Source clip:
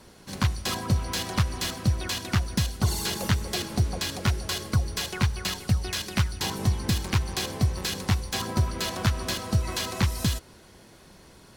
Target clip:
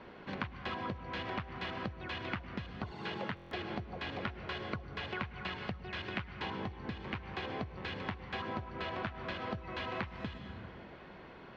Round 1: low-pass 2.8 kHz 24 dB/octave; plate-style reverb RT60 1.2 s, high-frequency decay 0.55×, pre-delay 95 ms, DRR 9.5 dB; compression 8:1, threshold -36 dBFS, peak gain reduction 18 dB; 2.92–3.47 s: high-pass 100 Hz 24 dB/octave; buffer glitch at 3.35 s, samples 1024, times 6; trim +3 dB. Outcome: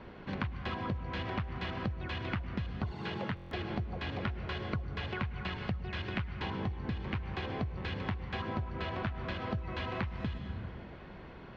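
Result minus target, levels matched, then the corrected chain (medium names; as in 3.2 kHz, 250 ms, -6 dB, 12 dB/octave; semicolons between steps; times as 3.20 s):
125 Hz band +4.5 dB
low-pass 2.8 kHz 24 dB/octave; plate-style reverb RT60 1.2 s, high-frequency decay 0.55×, pre-delay 95 ms, DRR 9.5 dB; compression 8:1, threshold -36 dBFS, peak gain reduction 18 dB; bass shelf 150 Hz -12 dB; 2.92–3.47 s: high-pass 100 Hz 24 dB/octave; buffer glitch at 3.35 s, samples 1024, times 6; trim +3 dB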